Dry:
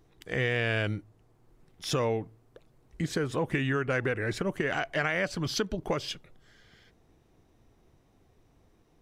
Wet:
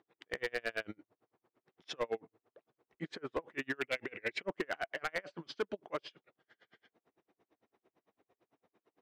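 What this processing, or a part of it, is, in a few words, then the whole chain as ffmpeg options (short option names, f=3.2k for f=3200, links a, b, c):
helicopter radio: -filter_complex "[0:a]highpass=340,lowpass=2.8k,aeval=exprs='val(0)*pow(10,-37*(0.5-0.5*cos(2*PI*8.9*n/s))/20)':c=same,asoftclip=type=hard:threshold=-28.5dB,asettb=1/sr,asplit=3[a][b][c];[a]atrim=end=3.814[d];[b]atrim=start=3.81:end=4.43,asetpts=PTS-STARTPTS,afade=t=in:d=0.004:c=qsin,afade=t=out:st=0.616:d=0.004:c=qsin,highshelf=f=1.8k:t=q:w=3:g=6[e];[c]atrim=start=4.426[f];[d][e]acrossfade=d=0.004:c1=hsin:c2=qsin[g];[g][f]acrossfade=d=0.004:c1=qsin:c2=hsin,volume=1dB"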